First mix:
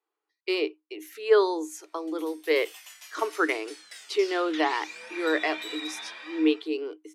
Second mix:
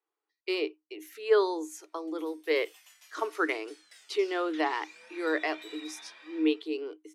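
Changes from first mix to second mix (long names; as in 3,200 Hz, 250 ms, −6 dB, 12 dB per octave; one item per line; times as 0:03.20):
speech −3.5 dB
background −10.0 dB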